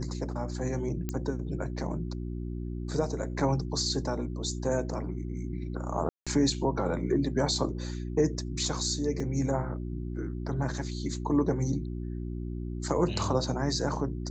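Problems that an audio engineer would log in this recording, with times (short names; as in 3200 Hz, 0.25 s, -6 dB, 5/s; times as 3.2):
hum 60 Hz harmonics 6 -35 dBFS
1.09 pop -18 dBFS
6.09–6.27 gap 0.176 s
9.2 gap 2.8 ms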